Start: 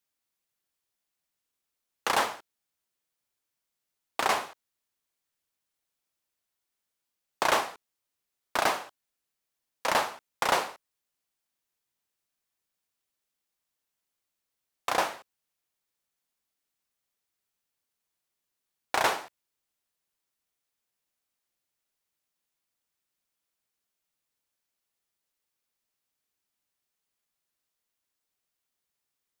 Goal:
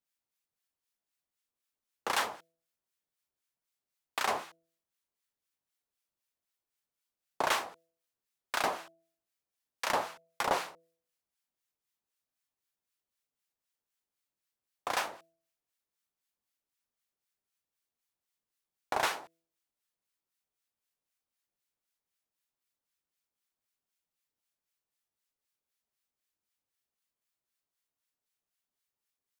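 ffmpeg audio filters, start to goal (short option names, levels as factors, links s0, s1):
-filter_complex "[0:a]acrossover=split=1100[s0][s1];[s0]aeval=exprs='val(0)*(1-0.7/2+0.7/2*cos(2*PI*3.9*n/s))':c=same[s2];[s1]aeval=exprs='val(0)*(1-0.7/2-0.7/2*cos(2*PI*3.9*n/s))':c=same[s3];[s2][s3]amix=inputs=2:normalize=0,atempo=1,bandreject=f=165.5:t=h:w=4,bandreject=f=331:t=h:w=4,bandreject=f=496.5:t=h:w=4,bandreject=f=662:t=h:w=4,volume=0.841"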